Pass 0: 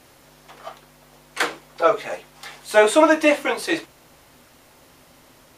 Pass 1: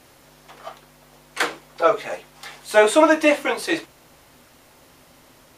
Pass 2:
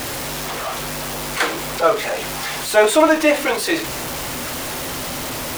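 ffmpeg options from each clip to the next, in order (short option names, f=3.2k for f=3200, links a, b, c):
-af anull
-af "aeval=exprs='val(0)+0.5*0.0891*sgn(val(0))':c=same"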